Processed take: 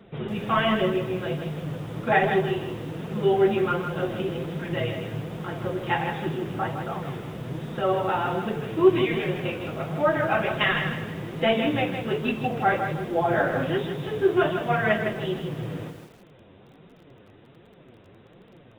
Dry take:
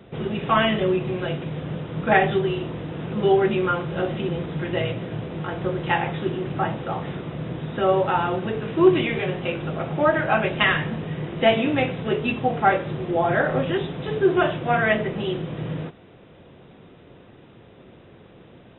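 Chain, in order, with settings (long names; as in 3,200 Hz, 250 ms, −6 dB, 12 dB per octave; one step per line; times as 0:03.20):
flanger 1.3 Hz, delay 4.1 ms, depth 6.8 ms, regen +25%
feedback echo at a low word length 159 ms, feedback 35%, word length 8 bits, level −7 dB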